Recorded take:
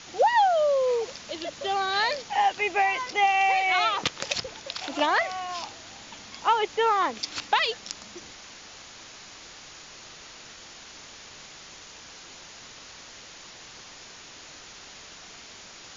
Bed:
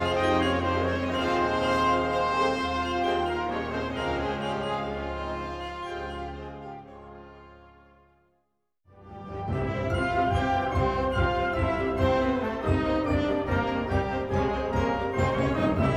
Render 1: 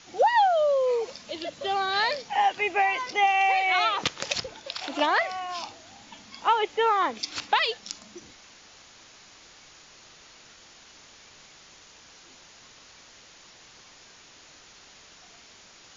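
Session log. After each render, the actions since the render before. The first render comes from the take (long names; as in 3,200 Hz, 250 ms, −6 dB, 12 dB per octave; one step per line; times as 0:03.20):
noise reduction from a noise print 6 dB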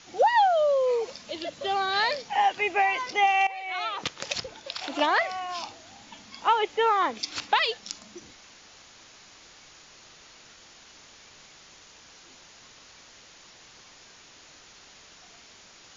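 0:03.47–0:05.10: fade in equal-power, from −17.5 dB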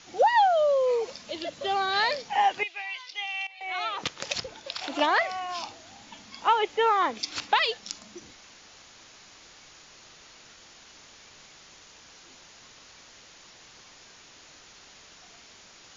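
0:02.63–0:03.61: resonant band-pass 3,700 Hz, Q 2.1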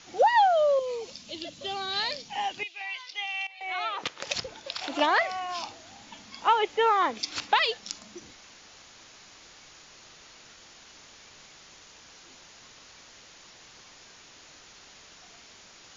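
0:00.79–0:02.81: flat-topped bell 920 Hz −8.5 dB 2.7 octaves
0:03.74–0:04.27: bass and treble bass −8 dB, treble −5 dB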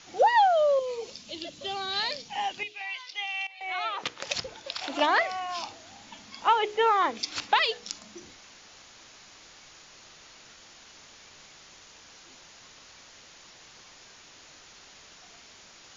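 mains-hum notches 60/120/180/240/300/360/420/480 Hz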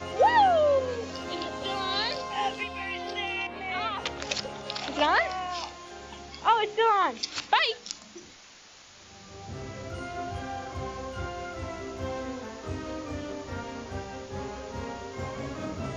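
mix in bed −10.5 dB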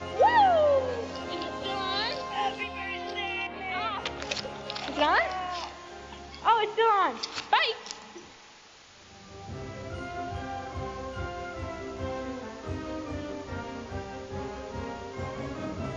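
high-frequency loss of the air 58 metres
spring reverb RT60 3 s, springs 35/56 ms, chirp 55 ms, DRR 17.5 dB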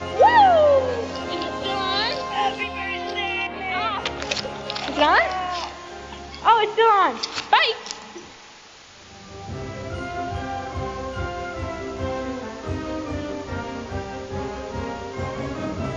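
level +7 dB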